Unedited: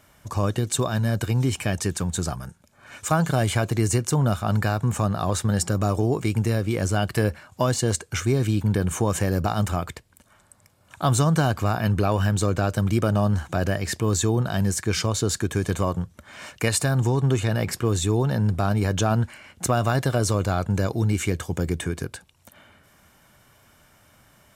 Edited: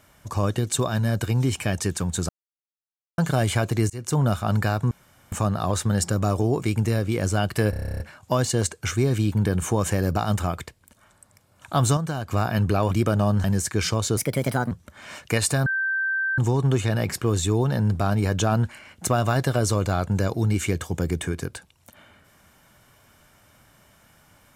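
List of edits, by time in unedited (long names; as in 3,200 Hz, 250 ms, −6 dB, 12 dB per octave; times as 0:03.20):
0:02.29–0:03.18: silence
0:03.90–0:04.17: fade in
0:04.91: splice in room tone 0.41 s
0:07.29: stutter 0.03 s, 11 plays
0:11.26–0:11.60: clip gain −8 dB
0:12.20–0:12.87: remove
0:13.40–0:14.56: remove
0:15.29–0:16.02: play speed 135%
0:16.97: insert tone 1,560 Hz −21.5 dBFS 0.72 s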